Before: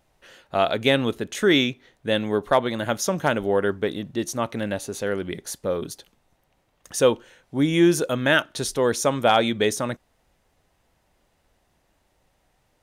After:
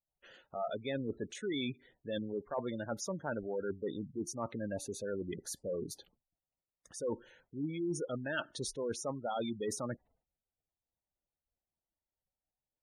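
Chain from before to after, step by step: expander -52 dBFS; spectral gate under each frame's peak -15 dB strong; reverse; compression 6:1, threshold -26 dBFS, peak gain reduction 12.5 dB; reverse; trim -8 dB

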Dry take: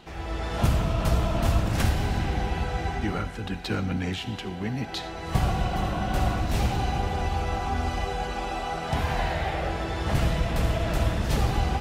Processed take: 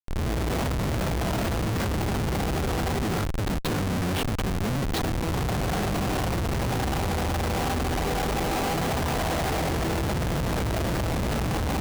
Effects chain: high-pass 100 Hz 6 dB/octave; in parallel at +3 dB: peak limiter -21.5 dBFS, peak gain reduction 9 dB; on the sum: Schmitt trigger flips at -23.5 dBFS; trim -3.5 dB

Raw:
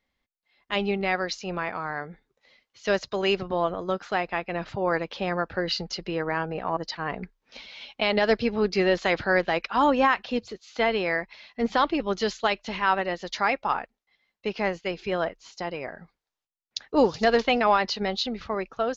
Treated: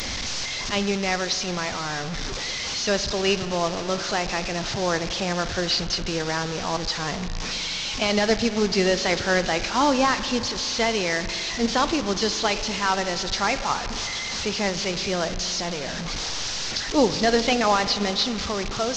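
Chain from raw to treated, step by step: one-bit delta coder 32 kbps, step -27.5 dBFS; tone controls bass +5 dB, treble +13 dB; spring tank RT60 3.5 s, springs 39 ms, chirp 30 ms, DRR 11.5 dB

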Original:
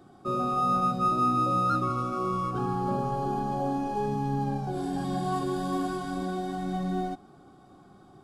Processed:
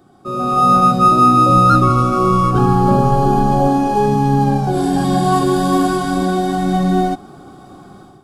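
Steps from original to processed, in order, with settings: 1.49–3.68 s: bass shelf 93 Hz +11 dB; level rider gain up to 12 dB; treble shelf 7.7 kHz +4.5 dB; trim +3 dB

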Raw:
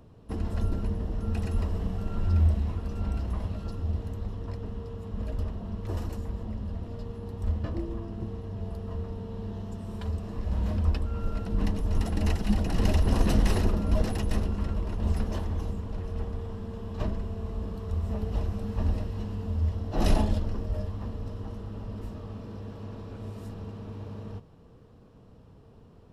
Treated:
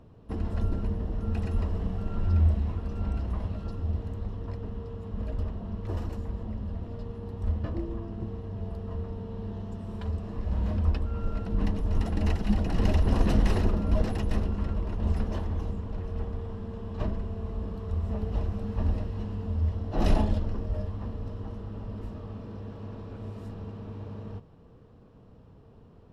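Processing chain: treble shelf 5.8 kHz -11.5 dB

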